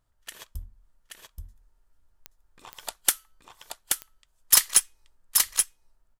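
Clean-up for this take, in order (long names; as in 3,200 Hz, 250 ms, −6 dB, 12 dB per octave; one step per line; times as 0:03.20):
clipped peaks rebuilt −7 dBFS
click removal
echo removal 828 ms −4 dB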